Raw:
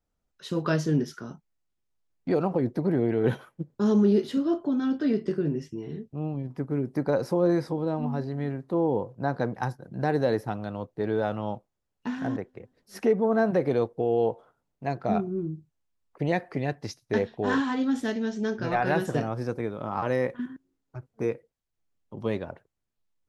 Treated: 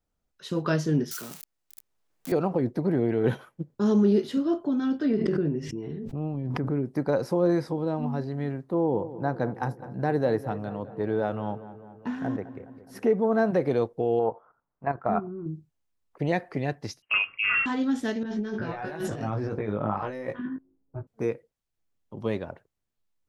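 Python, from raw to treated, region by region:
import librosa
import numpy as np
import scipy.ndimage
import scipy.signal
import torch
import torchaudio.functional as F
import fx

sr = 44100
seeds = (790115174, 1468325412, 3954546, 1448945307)

y = fx.chain(x, sr, fx.crossing_spikes(level_db=-28.0),
    fx.bass_treble(bass_db=-6, treble_db=1),
    fx.band_squash(depth_pct=40), at=(1.11, 2.32))
y = fx.chain(y, sr, fx.lowpass(hz=2700.0, slope=6),
    fx.pre_swell(db_per_s=26.0), at=(5.06, 6.86))
y = fx.chain(y, sr, fx.peak_eq(hz=5000.0, db=-6.0, octaves=2.1),
    fx.echo_filtered(ms=208, feedback_pct=63, hz=2400.0, wet_db=-14.5), at=(8.68, 13.13))
y = fx.chain(y, sr, fx.lowpass(hz=1800.0, slope=12),
    fx.peak_eq(hz=1200.0, db=12.5, octaves=1.3),
    fx.level_steps(step_db=12), at=(14.19, 15.46))
y = fx.chain(y, sr, fx.highpass(hz=150.0, slope=24),
    fx.freq_invert(carrier_hz=3000),
    fx.band_squash(depth_pct=40), at=(17.02, 17.66))
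y = fx.chain(y, sr, fx.env_lowpass(base_hz=510.0, full_db=-21.0),
    fx.over_compress(threshold_db=-33.0, ratio=-1.0),
    fx.doubler(ms=19.0, db=-3.0), at=(18.23, 21.07))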